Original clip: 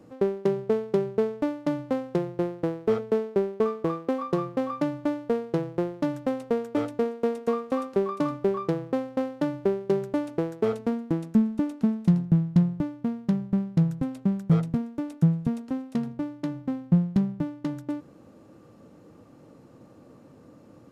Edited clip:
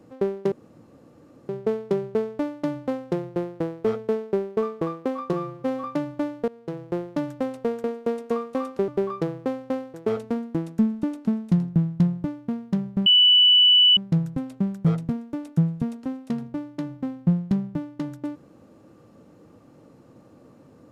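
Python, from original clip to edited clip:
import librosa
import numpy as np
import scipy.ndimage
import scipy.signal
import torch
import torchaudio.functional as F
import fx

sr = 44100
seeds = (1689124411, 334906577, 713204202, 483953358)

y = fx.edit(x, sr, fx.insert_room_tone(at_s=0.52, length_s=0.97),
    fx.stretch_span(start_s=4.36, length_s=0.34, factor=1.5),
    fx.fade_in_from(start_s=5.34, length_s=0.51, floor_db=-21.0),
    fx.cut(start_s=6.7, length_s=0.31),
    fx.cut(start_s=8.05, length_s=0.3),
    fx.cut(start_s=9.41, length_s=1.09),
    fx.insert_tone(at_s=13.62, length_s=0.91, hz=2970.0, db=-12.0), tone=tone)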